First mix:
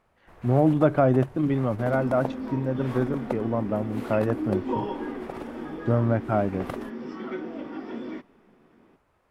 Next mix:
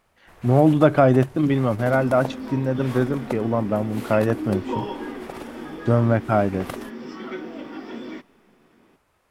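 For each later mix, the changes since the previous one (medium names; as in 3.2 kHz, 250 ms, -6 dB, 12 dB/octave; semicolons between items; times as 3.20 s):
speech +4.0 dB; master: add treble shelf 2.6 kHz +11 dB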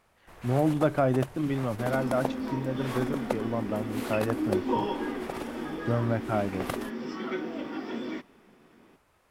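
speech -9.0 dB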